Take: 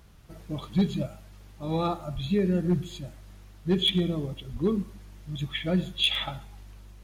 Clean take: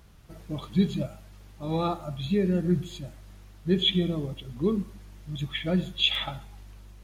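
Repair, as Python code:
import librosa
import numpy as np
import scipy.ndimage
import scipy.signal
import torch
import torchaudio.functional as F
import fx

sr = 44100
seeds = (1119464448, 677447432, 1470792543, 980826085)

y = fx.fix_declip(x, sr, threshold_db=-16.5)
y = fx.highpass(y, sr, hz=140.0, slope=24, at=(2.14, 2.26), fade=0.02)
y = fx.highpass(y, sr, hz=140.0, slope=24, at=(4.52, 4.64), fade=0.02)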